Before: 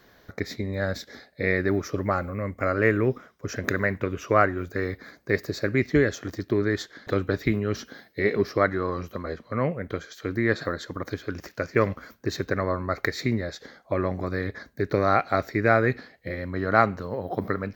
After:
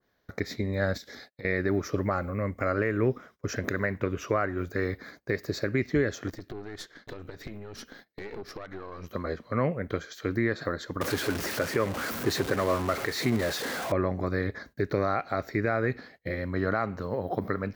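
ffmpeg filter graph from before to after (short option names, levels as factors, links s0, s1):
-filter_complex "[0:a]asettb=1/sr,asplit=3[s0][s1][s2];[s0]atrim=end=0.974[s3];[s1]atrim=start=0.97:end=1.45,asetpts=PTS-STARTPTS,afade=t=in:d=0.004:c=qsin,afade=t=out:st=0.476:d=0.004:c=qsin,agate=range=0.0224:threshold=0.00251:ratio=3:release=100:detection=peak,highshelf=f=2600:g=6,acompressor=threshold=0.01:ratio=8:attack=3.2:release=140:knee=1:detection=peak[s4];[s2]atrim=start=1.446[s5];[s3][s4]acrossfade=d=0.004:c1=hsin:c2=qsin[s6];[s6][s5]acrossfade=d=0.004:c1=qsin:c2=hsin,asettb=1/sr,asplit=3[s7][s8][s9];[s7]atrim=end=6.304[s10];[s8]atrim=start=6.3:end=9.11,asetpts=PTS-STARTPTS,afade=t=in:d=0.004:c=qsin,afade=t=out:st=2.806:d=0.004:c=qsin,acompressor=threshold=0.0355:ratio=16:attack=3.2:release=140:knee=1:detection=peak,aeval=exprs='(tanh(39.8*val(0)+0.75)-tanh(0.75))/39.8':c=same[s11];[s9]atrim=start=9.106[s12];[s10][s11]acrossfade=d=0.004:c1=hsin:c2=qsin[s13];[s13][s12]acrossfade=d=0.004:c1=qsin:c2=hsin,asettb=1/sr,asplit=3[s14][s15][s16];[s14]atrim=end=11.014[s17];[s15]atrim=start=11.01:end=13.92,asetpts=PTS-STARTPTS,afade=t=in:d=0.004:c=qsin,afade=t=out:st=2.906:d=0.004:c=qsin,aeval=exprs='val(0)+0.5*0.0473*sgn(val(0))':c=same,highpass=f=150:p=1[s18];[s16]atrim=start=13.916[s19];[s17][s18]acrossfade=d=0.004:c1=hsin:c2=qsin[s20];[s20][s19]acrossfade=d=0.004:c1=qsin:c2=hsin,agate=range=0.141:threshold=0.00316:ratio=16:detection=peak,alimiter=limit=0.2:level=0:latency=1:release=193,adynamicequalizer=threshold=0.0126:dfrequency=1700:dqfactor=0.7:tfrequency=1700:tqfactor=0.7:attack=5:release=100:ratio=0.375:range=1.5:mode=cutabove:tftype=highshelf"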